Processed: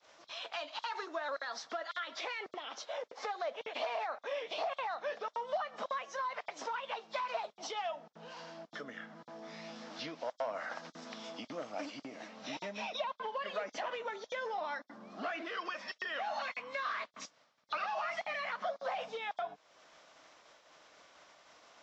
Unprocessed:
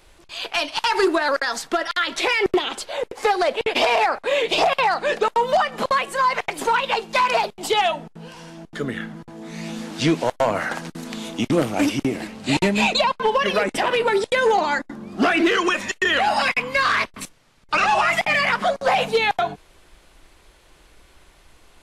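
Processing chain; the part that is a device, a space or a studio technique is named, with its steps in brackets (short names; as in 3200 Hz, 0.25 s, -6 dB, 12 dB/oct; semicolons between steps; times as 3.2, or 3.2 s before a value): expander -49 dBFS; hearing aid with frequency lowering (nonlinear frequency compression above 3200 Hz 1.5:1; compressor 2.5:1, threshold -41 dBFS, peak gain reduction 17 dB; speaker cabinet 310–6800 Hz, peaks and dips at 370 Hz -10 dB, 630 Hz +6 dB, 1200 Hz +4 dB, 2600 Hz -3 dB, 5400 Hz +4 dB); gain -4 dB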